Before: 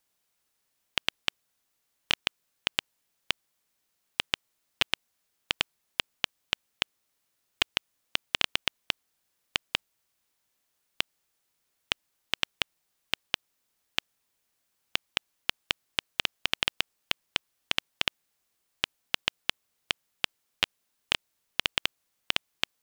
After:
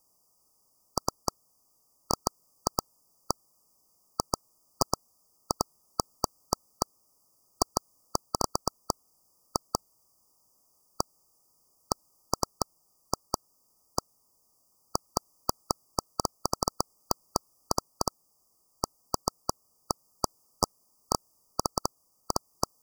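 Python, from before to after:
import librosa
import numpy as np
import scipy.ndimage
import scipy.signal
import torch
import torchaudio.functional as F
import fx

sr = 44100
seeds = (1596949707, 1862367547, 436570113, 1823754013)

p1 = fx.rider(x, sr, range_db=10, speed_s=0.5)
p2 = x + (p1 * 10.0 ** (0.5 / 20.0))
p3 = fx.brickwall_bandstop(p2, sr, low_hz=1300.0, high_hz=4600.0)
y = p3 * 10.0 ** (4.0 / 20.0)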